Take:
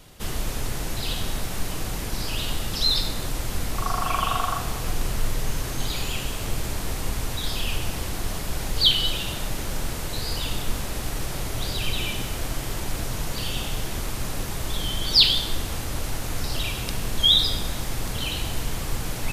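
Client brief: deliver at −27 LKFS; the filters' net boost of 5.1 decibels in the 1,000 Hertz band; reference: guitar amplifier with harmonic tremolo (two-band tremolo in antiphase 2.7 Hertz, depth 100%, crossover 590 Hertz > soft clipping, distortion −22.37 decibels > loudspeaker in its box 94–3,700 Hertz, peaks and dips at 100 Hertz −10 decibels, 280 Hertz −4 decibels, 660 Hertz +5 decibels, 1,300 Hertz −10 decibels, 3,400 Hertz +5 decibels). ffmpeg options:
ffmpeg -i in.wav -filter_complex "[0:a]equalizer=frequency=1000:width_type=o:gain=8.5,acrossover=split=590[link_01][link_02];[link_01]aeval=exprs='val(0)*(1-1/2+1/2*cos(2*PI*2.7*n/s))':channel_layout=same[link_03];[link_02]aeval=exprs='val(0)*(1-1/2-1/2*cos(2*PI*2.7*n/s))':channel_layout=same[link_04];[link_03][link_04]amix=inputs=2:normalize=0,asoftclip=threshold=-13dB,highpass=94,equalizer=frequency=100:width_type=q:width=4:gain=-10,equalizer=frequency=280:width_type=q:width=4:gain=-4,equalizer=frequency=660:width_type=q:width=4:gain=5,equalizer=frequency=1300:width_type=q:width=4:gain=-10,equalizer=frequency=3400:width_type=q:width=4:gain=5,lowpass=frequency=3700:width=0.5412,lowpass=frequency=3700:width=1.3066,volume=5dB" out.wav

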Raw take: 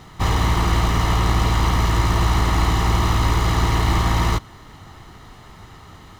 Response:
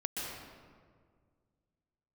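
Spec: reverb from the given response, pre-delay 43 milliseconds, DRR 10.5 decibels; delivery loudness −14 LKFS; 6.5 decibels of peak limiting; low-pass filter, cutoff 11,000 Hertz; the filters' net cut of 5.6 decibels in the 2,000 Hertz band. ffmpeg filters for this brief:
-filter_complex "[0:a]lowpass=11000,equalizer=frequency=2000:width_type=o:gain=-6.5,alimiter=limit=-12.5dB:level=0:latency=1,asplit=2[link_01][link_02];[1:a]atrim=start_sample=2205,adelay=43[link_03];[link_02][link_03]afir=irnorm=-1:irlink=0,volume=-14dB[link_04];[link_01][link_04]amix=inputs=2:normalize=0,volume=8.5dB"

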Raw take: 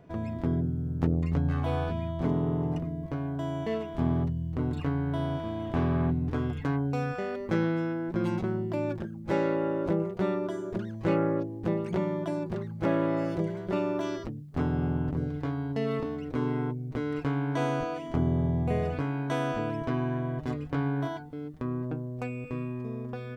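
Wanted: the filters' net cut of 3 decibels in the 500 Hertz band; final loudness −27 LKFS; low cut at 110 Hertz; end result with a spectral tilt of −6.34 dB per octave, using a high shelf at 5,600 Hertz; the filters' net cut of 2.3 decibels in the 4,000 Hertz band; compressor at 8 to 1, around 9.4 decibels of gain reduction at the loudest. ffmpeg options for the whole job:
ffmpeg -i in.wav -af "highpass=110,equalizer=frequency=500:width_type=o:gain=-4,equalizer=frequency=4000:width_type=o:gain=-6,highshelf=frequency=5600:gain=8,acompressor=threshold=-33dB:ratio=8,volume=11dB" out.wav

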